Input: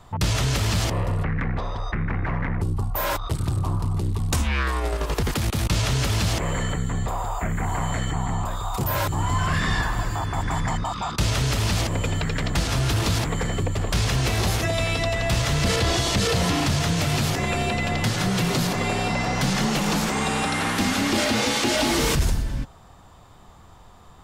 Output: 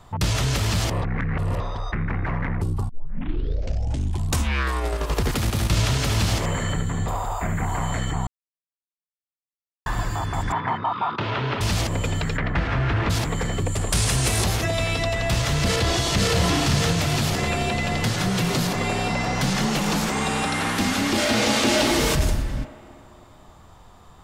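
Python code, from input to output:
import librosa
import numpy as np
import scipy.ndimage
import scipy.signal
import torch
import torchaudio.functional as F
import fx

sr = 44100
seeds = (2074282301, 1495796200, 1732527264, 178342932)

y = fx.echo_single(x, sr, ms=73, db=-7.0, at=(5.03, 7.64))
y = fx.cabinet(y, sr, low_hz=120.0, low_slope=24, high_hz=3200.0, hz=(170.0, 390.0, 960.0, 1400.0), db=(-8, 5, 7, 4), at=(10.52, 11.61))
y = fx.lowpass_res(y, sr, hz=1900.0, q=1.7, at=(12.36, 13.09), fade=0.02)
y = fx.peak_eq(y, sr, hz=9200.0, db=13.5, octaves=0.79, at=(13.66, 14.44))
y = fx.echo_throw(y, sr, start_s=15.55, length_s=0.8, ms=570, feedback_pct=55, wet_db=-5.0)
y = fx.reverb_throw(y, sr, start_s=21.18, length_s=0.6, rt60_s=2.8, drr_db=1.0)
y = fx.edit(y, sr, fx.reverse_span(start_s=1.02, length_s=0.58),
    fx.tape_start(start_s=2.89, length_s=1.44),
    fx.silence(start_s=8.27, length_s=1.59), tone=tone)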